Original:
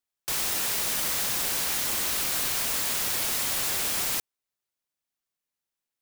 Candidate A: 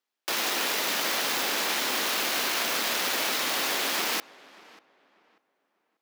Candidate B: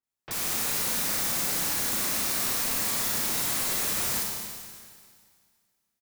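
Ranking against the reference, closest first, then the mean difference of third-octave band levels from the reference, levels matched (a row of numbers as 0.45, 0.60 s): B, A; 2.0, 6.0 dB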